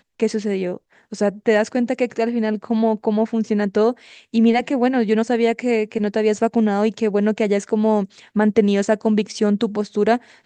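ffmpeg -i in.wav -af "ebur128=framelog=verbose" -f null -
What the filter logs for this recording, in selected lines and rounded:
Integrated loudness:
  I:         -19.6 LUFS
  Threshold: -29.7 LUFS
Loudness range:
  LRA:         1.9 LU
  Threshold: -39.5 LUFS
  LRA low:   -20.8 LUFS
  LRA high:  -18.9 LUFS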